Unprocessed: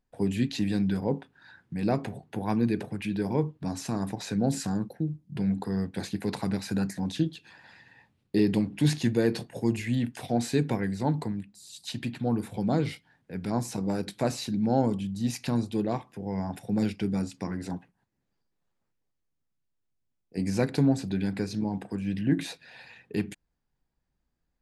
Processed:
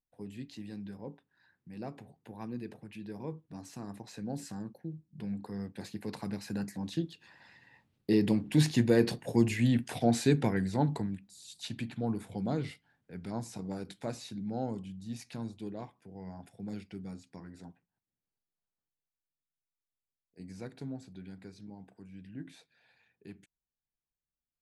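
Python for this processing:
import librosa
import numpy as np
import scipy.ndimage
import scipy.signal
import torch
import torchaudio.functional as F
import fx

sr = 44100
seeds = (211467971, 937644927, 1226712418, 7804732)

y = fx.doppler_pass(x, sr, speed_mps=11, closest_m=14.0, pass_at_s=9.6)
y = y * librosa.db_to_amplitude(1.0)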